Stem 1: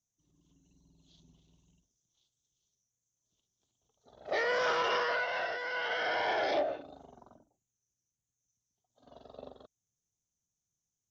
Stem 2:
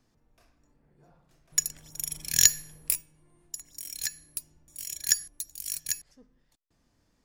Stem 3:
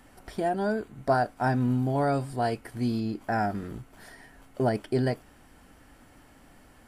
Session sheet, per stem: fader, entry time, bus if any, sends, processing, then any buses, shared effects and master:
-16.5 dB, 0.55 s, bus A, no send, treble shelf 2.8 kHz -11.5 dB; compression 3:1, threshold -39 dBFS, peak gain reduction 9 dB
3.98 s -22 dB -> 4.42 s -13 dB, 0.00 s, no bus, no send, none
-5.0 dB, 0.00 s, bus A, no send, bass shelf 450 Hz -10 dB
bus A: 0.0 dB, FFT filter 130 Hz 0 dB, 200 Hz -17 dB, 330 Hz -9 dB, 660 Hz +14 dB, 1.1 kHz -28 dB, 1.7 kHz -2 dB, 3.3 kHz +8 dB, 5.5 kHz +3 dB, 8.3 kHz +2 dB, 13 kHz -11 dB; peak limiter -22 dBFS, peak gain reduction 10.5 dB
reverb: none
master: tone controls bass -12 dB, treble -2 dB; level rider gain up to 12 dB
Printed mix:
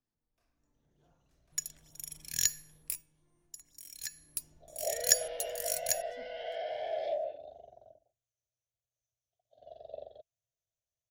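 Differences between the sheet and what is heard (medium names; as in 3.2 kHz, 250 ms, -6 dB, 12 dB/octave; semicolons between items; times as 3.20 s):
stem 3: muted; master: missing tone controls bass -12 dB, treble -2 dB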